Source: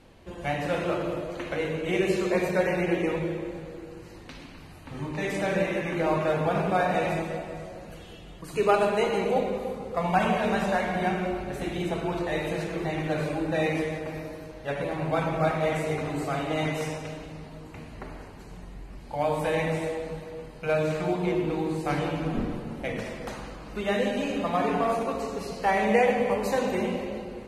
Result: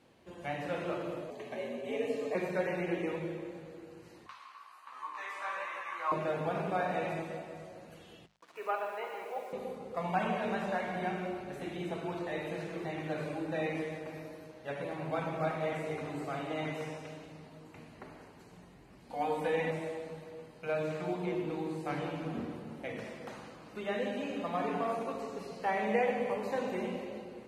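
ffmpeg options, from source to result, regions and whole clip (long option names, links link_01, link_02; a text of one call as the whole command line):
ffmpeg -i in.wav -filter_complex "[0:a]asettb=1/sr,asplit=3[link_01][link_02][link_03];[link_01]atrim=end=1.304[link_04];[link_02]atrim=start=1.3:end=2.35,asetpts=PTS-STARTPTS,afade=type=in:duration=0.004:curve=qsin,afade=type=out:start_time=1.046:duration=0.004:curve=qsin,equalizer=frequency=2100:width=0.35:gain=-4.5,afreqshift=80,asuperstop=centerf=1400:order=8:qfactor=5.4[link_05];[link_03]atrim=start=2.346[link_06];[link_04][link_05]acrossfade=duration=0.004:curve1=hsin:curve2=qsin[link_07];[link_07][link_06]acrossfade=duration=0.004:curve1=qsin:curve2=hsin,asettb=1/sr,asplit=3[link_08][link_09][link_10];[link_08]atrim=end=4.264[link_11];[link_09]atrim=start=4.26:end=6.12,asetpts=PTS-STARTPTS,afade=type=in:duration=0.004:curve=qsin,afade=type=out:start_time=1.856:duration=0.004:curve=qsin,flanger=delay=15:depth=2.6:speed=1.4,highpass=frequency=1100:width_type=q:width=11[link_12];[link_10]atrim=start=6.116[link_13];[link_11][link_12]acrossfade=duration=0.004:curve1=hsin:curve2=qsin[link_14];[link_14][link_13]acrossfade=duration=0.004:curve1=qsin:curve2=hsin,asettb=1/sr,asplit=3[link_15][link_16][link_17];[link_15]atrim=end=8.264[link_18];[link_16]atrim=start=8.26:end=9.53,asetpts=PTS-STARTPTS,afade=type=in:duration=0.004:curve=qsin,afade=type=out:start_time=1.266:duration=0.004:curve=qsin,highpass=750,lowpass=2000,acrusher=bits=7:mix=0:aa=0.5[link_19];[link_17]atrim=start=9.526[link_20];[link_18][link_19]acrossfade=duration=0.004:curve1=hsin:curve2=qsin[link_21];[link_21][link_20]acrossfade=duration=0.004:curve1=qsin:curve2=hsin,asettb=1/sr,asplit=3[link_22][link_23][link_24];[link_22]atrim=end=19.104[link_25];[link_23]atrim=start=19.1:end=19.71,asetpts=PTS-STARTPTS,afade=type=in:duration=0.004:curve=qsin,afade=type=out:start_time=0.606:duration=0.004:curve=qsin,aecho=1:1:4.1:0.93,atrim=end_sample=26901,acompressor=mode=upward:threshold=-33dB:ratio=2.5:attack=3.2:release=140:knee=2.83:detection=peak[link_26];[link_24]atrim=start=19.706[link_27];[link_25][link_26]acrossfade=duration=0.004:curve1=hsin:curve2=qsin[link_28];[link_28][link_27]acrossfade=duration=0.004:curve1=qsin:curve2=hsin,highpass=110,bandreject=frequency=50:width_type=h:width=6,bandreject=frequency=100:width_type=h:width=6,bandreject=frequency=150:width_type=h:width=6,bandreject=frequency=200:width_type=h:width=6,acrossover=split=3600[link_29][link_30];[link_30]acompressor=threshold=-50dB:ratio=4:attack=1:release=60[link_31];[link_29][link_31]amix=inputs=2:normalize=0,volume=-8dB" out.wav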